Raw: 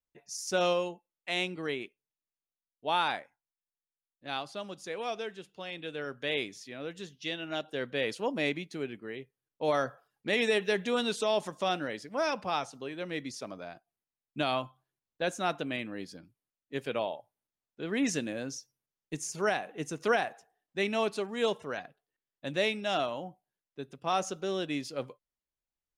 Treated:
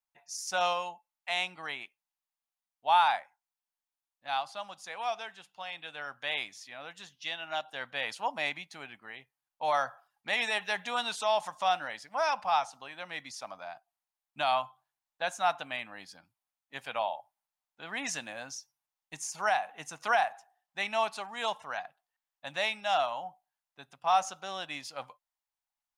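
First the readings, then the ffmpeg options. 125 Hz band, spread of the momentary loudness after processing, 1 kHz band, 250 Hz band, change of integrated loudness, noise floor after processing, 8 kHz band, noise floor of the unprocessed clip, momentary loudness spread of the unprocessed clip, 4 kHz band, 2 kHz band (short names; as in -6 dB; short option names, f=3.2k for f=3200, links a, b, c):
-12.5 dB, 16 LU, +5.5 dB, -14.5 dB, +0.5 dB, under -85 dBFS, 0.0 dB, under -85 dBFS, 14 LU, +0.5 dB, +1.0 dB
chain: -af "lowshelf=f=570:t=q:w=3:g=-11.5"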